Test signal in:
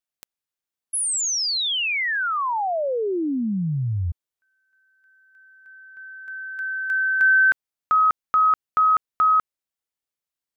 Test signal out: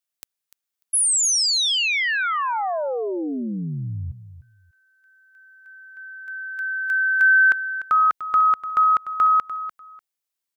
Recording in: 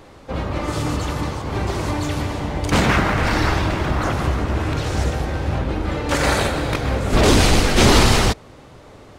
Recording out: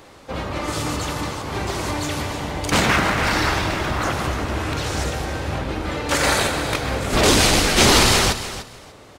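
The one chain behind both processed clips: tilt EQ +1.5 dB/octave; on a send: feedback delay 296 ms, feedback 19%, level -13 dB

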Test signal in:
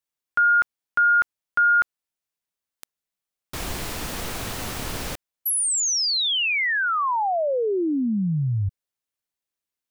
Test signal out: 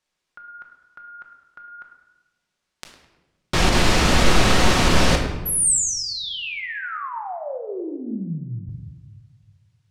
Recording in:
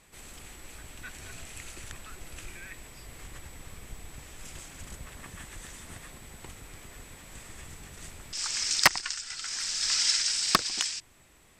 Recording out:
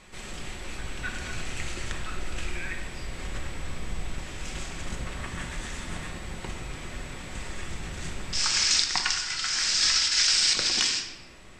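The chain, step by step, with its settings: low-pass 6.1 kHz 12 dB/octave; compressor with a negative ratio -30 dBFS, ratio -0.5; tape echo 104 ms, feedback 48%, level -13.5 dB, low-pass 2.9 kHz; simulated room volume 530 m³, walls mixed, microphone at 1 m; trim +6 dB

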